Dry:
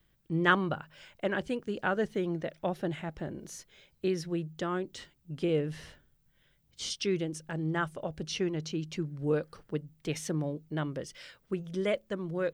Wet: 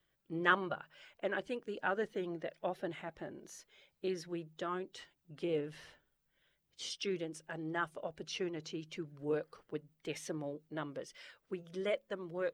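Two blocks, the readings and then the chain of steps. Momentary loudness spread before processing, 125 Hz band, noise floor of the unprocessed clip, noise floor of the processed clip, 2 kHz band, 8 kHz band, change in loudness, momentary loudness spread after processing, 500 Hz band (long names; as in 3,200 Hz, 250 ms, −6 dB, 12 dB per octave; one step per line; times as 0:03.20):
11 LU, −13.5 dB, −70 dBFS, −80 dBFS, −4.5 dB, −7.5 dB, −6.5 dB, 12 LU, −5.5 dB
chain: spectral magnitudes quantised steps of 15 dB
bass and treble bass −12 dB, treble −4 dB
level −3.5 dB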